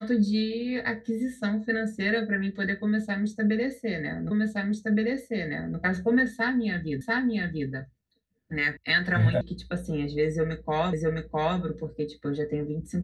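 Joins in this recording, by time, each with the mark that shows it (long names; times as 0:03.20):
0:04.31: the same again, the last 1.47 s
0:07.01: the same again, the last 0.69 s
0:08.77: cut off before it has died away
0:09.41: cut off before it has died away
0:10.93: the same again, the last 0.66 s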